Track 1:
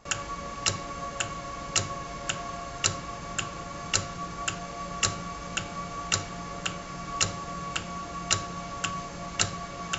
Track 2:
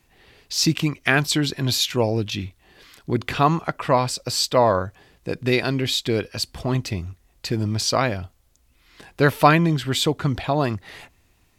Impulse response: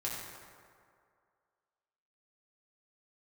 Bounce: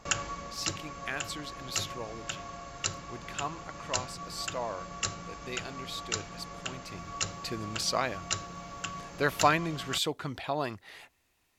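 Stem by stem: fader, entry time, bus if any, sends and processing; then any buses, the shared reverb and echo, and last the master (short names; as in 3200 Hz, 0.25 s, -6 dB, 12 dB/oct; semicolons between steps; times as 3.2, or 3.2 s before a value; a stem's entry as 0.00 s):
+2.5 dB, 0.00 s, no send, auto duck -9 dB, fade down 0.55 s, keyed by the second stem
6.8 s -16.5 dB -> 7.07 s -7.5 dB, 0.00 s, no send, low shelf 270 Hz -12 dB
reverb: off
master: dry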